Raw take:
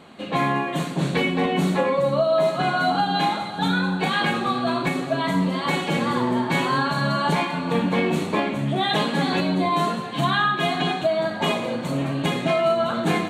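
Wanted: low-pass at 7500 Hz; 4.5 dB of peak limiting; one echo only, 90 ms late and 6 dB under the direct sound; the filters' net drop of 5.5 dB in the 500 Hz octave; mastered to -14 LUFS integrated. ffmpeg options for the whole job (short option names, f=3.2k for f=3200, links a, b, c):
-af "lowpass=7.5k,equalizer=f=500:t=o:g=-8,alimiter=limit=-16dB:level=0:latency=1,aecho=1:1:90:0.501,volume=10.5dB"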